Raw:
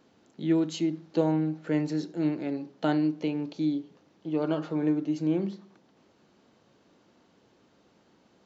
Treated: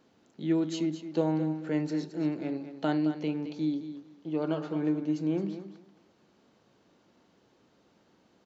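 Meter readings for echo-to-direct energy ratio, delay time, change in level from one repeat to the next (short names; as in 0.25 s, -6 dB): -11.0 dB, 0.218 s, -14.5 dB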